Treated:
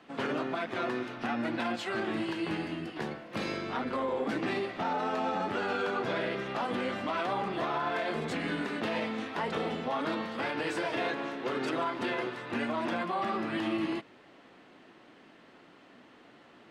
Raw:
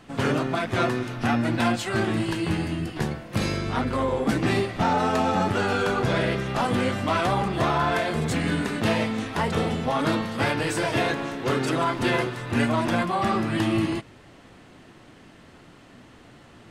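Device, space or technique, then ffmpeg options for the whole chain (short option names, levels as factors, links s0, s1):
DJ mixer with the lows and highs turned down: -filter_complex "[0:a]acrossover=split=200 4800:gain=0.1 1 0.224[s0][s1][s2];[s0][s1][s2]amix=inputs=3:normalize=0,alimiter=limit=0.119:level=0:latency=1:release=66,volume=0.596"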